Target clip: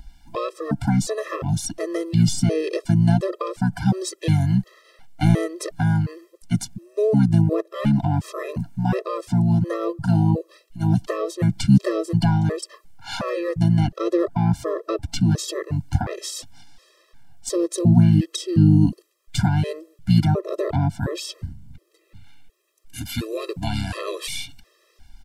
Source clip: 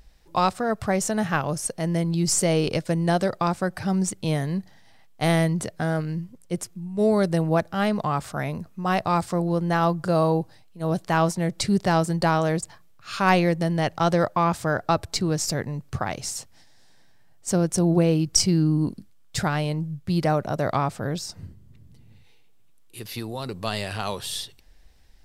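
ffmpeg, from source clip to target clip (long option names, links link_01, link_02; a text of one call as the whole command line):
ffmpeg -i in.wav -filter_complex "[0:a]asplit=2[link_01][link_02];[link_02]asetrate=29433,aresample=44100,atempo=1.49831,volume=-3dB[link_03];[link_01][link_03]amix=inputs=2:normalize=0,acrossover=split=360[link_04][link_05];[link_05]acompressor=threshold=-31dB:ratio=6[link_06];[link_04][link_06]amix=inputs=2:normalize=0,afftfilt=real='re*gt(sin(2*PI*1.4*pts/sr)*(1-2*mod(floor(b*sr/1024/340),2)),0)':imag='im*gt(sin(2*PI*1.4*pts/sr)*(1-2*mod(floor(b*sr/1024/340),2)),0)':win_size=1024:overlap=0.75,volume=6.5dB" out.wav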